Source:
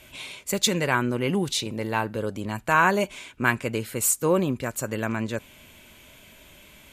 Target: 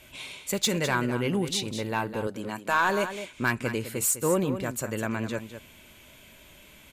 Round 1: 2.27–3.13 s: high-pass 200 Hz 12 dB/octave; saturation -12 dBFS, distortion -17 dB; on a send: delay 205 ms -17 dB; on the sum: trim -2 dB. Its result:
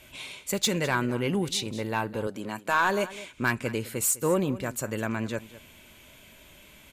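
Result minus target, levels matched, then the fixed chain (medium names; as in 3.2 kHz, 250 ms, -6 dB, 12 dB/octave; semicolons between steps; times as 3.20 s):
echo-to-direct -6.5 dB
2.27–3.13 s: high-pass 200 Hz 12 dB/octave; saturation -12 dBFS, distortion -17 dB; on a send: delay 205 ms -10.5 dB; on the sum: trim -2 dB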